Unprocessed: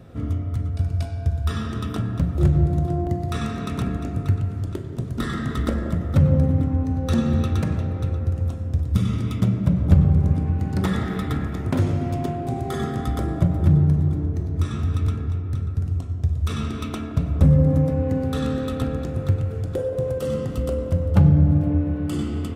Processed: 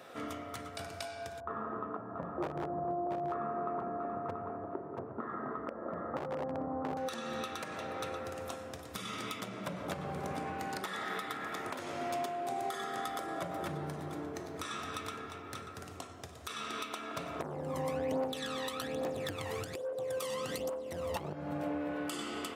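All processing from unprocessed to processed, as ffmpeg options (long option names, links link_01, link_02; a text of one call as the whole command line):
ffmpeg -i in.wav -filter_complex "[0:a]asettb=1/sr,asplit=3[link_01][link_02][link_03];[link_01]atrim=end=1.404[link_04];[link_02]atrim=start=1.4:end=6.97,asetpts=PTS-STARTPTS,afade=type=in:duration=0.004:curve=qsin,afade=type=out:start_time=5.566:duration=0.004:curve=qsin,lowpass=frequency=1100:width=0.5412,lowpass=frequency=1100:width=1.3066,aeval=exprs='0.266*(abs(mod(val(0)/0.266+3,4)-2)-1)':channel_layout=same,aecho=1:1:682:0.422,atrim=end_sample=245637[link_05];[link_03]atrim=start=6.966[link_06];[link_04][link_05]acrossfade=duration=0.004:curve1=hsin:curve2=qsin[link_07];[link_07][link_06]acrossfade=duration=0.004:curve1=qsin:curve2=hsin,asettb=1/sr,asplit=3[link_08][link_09][link_10];[link_08]atrim=end=17.404[link_11];[link_09]atrim=start=17.4:end=21.33,asetpts=PTS-STARTPTS,afade=type=in:duration=0.004:curve=qsin,afade=type=out:start_time=3.926:duration=0.004:curve=qsin,equalizer=frequency=1400:width=4.8:gain=-11.5,aphaser=in_gain=1:out_gain=1:delay=1.1:decay=0.69:speed=1.2:type=triangular,acontrast=82[link_12];[link_10]atrim=start=21.326[link_13];[link_11][link_12]acrossfade=duration=0.004:curve1=hsin:curve2=qsin[link_14];[link_14][link_13]acrossfade=duration=0.004:curve1=qsin:curve2=hsin,highpass=690,acompressor=threshold=-37dB:ratio=6,alimiter=level_in=6.5dB:limit=-24dB:level=0:latency=1:release=434,volume=-6.5dB,volume=5dB" out.wav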